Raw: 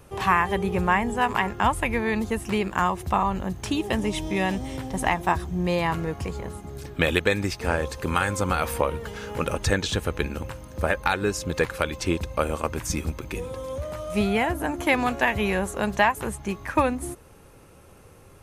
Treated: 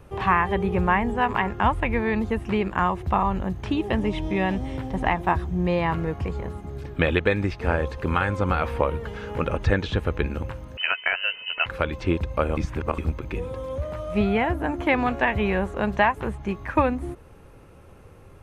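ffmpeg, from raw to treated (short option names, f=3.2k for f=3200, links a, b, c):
-filter_complex "[0:a]asettb=1/sr,asplit=3[a][b][c];[a]atrim=end=10.774[d];[b]atrim=start=10.77:end=11.66,asetpts=PTS-STARTPTS,afade=t=in:d=0.004:c=qsin,afade=t=out:st=0.886:d=0.004:c=qsin,lowpass=f=2.6k:t=q:w=0.5098,lowpass=f=2.6k:t=q:w=0.6013,lowpass=f=2.6k:t=q:w=0.9,lowpass=f=2.6k:t=q:w=2.563,afreqshift=-3100[e];[c]atrim=start=11.656[f];[d][e]acrossfade=d=0.004:c1=hsin:c2=qsin[g];[g][f]acrossfade=d=0.004:c1=qsin:c2=hsin,asplit=3[h][i][j];[h]atrim=end=12.572[k];[i]atrim=start=12.568:end=12.982,asetpts=PTS-STARTPTS,areverse[l];[j]atrim=start=12.978[m];[k][l]acrossfade=d=0.004:c1=hsin:c2=hsin[n];[n][m]acrossfade=d=0.004:c1=hsin:c2=hsin,bass=f=250:g=-5,treble=f=4k:g=-9,acrossover=split=4600[o][p];[p]acompressor=threshold=-59dB:ratio=4:attack=1:release=60[q];[o][q]amix=inputs=2:normalize=0,lowshelf=f=190:g=10.5"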